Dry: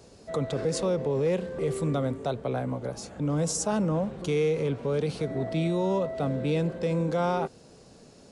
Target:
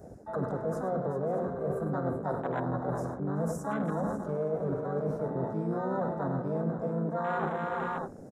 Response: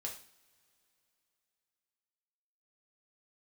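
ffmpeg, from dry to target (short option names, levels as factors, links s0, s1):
-filter_complex "[0:a]bandreject=f=60:t=h:w=6,bandreject=f=120:t=h:w=6,bandreject=f=180:t=h:w=6,bandreject=f=240:t=h:w=6,bandreject=f=300:t=h:w=6,bandreject=f=360:t=h:w=6,bandreject=f=420:t=h:w=6,asplit=2[s0][s1];[s1]aecho=0:1:53|103|383|540|608:0.211|0.299|0.266|0.168|0.141[s2];[s0][s2]amix=inputs=2:normalize=0,asplit=2[s3][s4];[s4]asetrate=58866,aresample=44100,atempo=0.749154,volume=0.631[s5];[s3][s5]amix=inputs=2:normalize=0,highshelf=f=2200:t=q:w=3:g=-11.5,areverse,acompressor=threshold=0.0178:ratio=6,areverse,afwtdn=0.00631,bass=f=250:g=1,treble=f=4000:g=13,bandreject=f=4500:w=9.5,volume=1.88"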